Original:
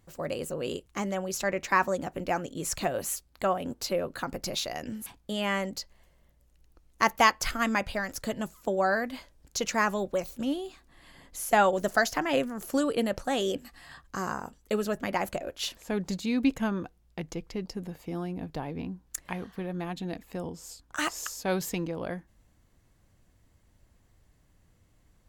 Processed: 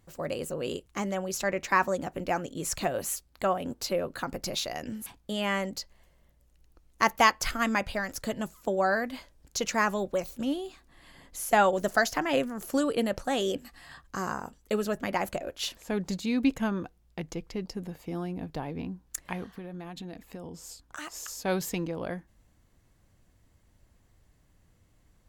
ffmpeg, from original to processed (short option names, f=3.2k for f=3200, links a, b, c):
-filter_complex "[0:a]asplit=3[a][b][c];[a]afade=t=out:st=19.5:d=0.02[d];[b]acompressor=threshold=-36dB:ratio=6:attack=3.2:release=140:knee=1:detection=peak,afade=t=in:st=19.5:d=0.02,afade=t=out:st=21.27:d=0.02[e];[c]afade=t=in:st=21.27:d=0.02[f];[d][e][f]amix=inputs=3:normalize=0"